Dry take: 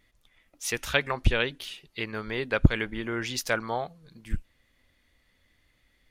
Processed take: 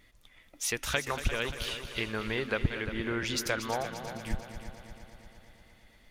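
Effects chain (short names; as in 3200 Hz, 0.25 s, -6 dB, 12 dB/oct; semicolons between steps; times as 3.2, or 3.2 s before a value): compressor 2.5:1, threshold -37 dBFS, peak gain reduction 17 dB; multi-head echo 0.116 s, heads second and third, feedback 60%, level -11.5 dB; gain +5 dB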